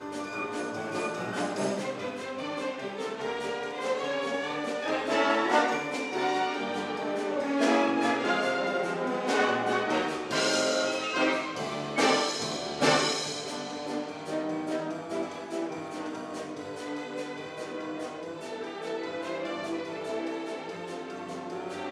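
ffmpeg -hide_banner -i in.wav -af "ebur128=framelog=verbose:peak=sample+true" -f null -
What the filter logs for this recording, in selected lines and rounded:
Integrated loudness:
  I:         -30.1 LUFS
  Threshold: -40.1 LUFS
Loudness range:
  LRA:         9.0 LU
  Threshold: -49.8 LUFS
  LRA low:   -36.1 LUFS
  LRA high:  -27.0 LUFS
Sample peak:
  Peak:      -10.9 dBFS
True peak:
  Peak:      -10.8 dBFS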